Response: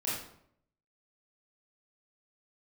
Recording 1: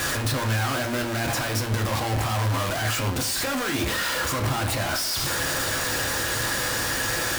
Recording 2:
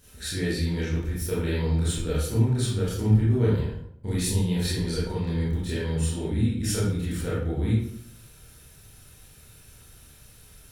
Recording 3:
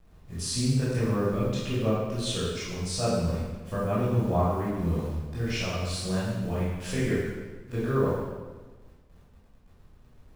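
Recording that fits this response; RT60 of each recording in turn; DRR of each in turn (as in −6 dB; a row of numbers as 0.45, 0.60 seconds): 2; 0.40, 0.70, 1.3 seconds; 3.0, −8.5, −10.0 decibels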